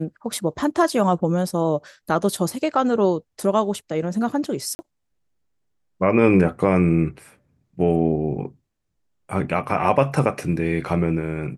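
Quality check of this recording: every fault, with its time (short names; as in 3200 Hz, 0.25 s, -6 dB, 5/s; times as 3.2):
4.75–4.79 gap 40 ms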